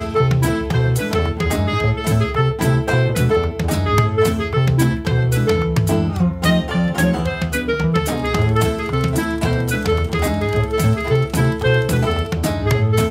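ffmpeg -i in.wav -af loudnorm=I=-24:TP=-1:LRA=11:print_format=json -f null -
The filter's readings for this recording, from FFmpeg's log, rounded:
"input_i" : "-18.0",
"input_tp" : "-2.9",
"input_lra" : "1.4",
"input_thresh" : "-28.0",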